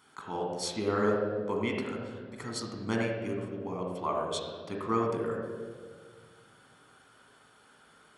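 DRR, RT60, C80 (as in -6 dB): -0.5 dB, 1.8 s, 3.0 dB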